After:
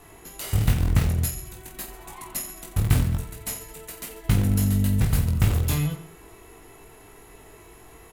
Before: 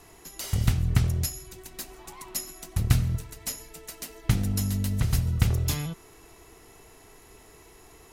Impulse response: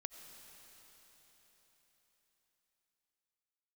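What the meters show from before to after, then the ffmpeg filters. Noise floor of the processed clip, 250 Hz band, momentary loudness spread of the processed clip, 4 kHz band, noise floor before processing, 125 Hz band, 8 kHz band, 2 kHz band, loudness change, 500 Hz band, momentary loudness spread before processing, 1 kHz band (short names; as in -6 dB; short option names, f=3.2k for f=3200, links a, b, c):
-49 dBFS, +5.0 dB, 15 LU, 0.0 dB, -53 dBFS, +3.0 dB, +1.5 dB, +3.0 dB, +3.5 dB, +4.5 dB, 16 LU, +4.0 dB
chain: -filter_complex "[0:a]equalizer=f=5.4k:w=1.6:g=-9,asplit=2[a][b];[b]aeval=exprs='(mod(8.41*val(0)+1,2)-1)/8.41':c=same,volume=-10.5dB[c];[a][c]amix=inputs=2:normalize=0,aecho=1:1:20|48|87.2|142.1|218.9:0.631|0.398|0.251|0.158|0.1"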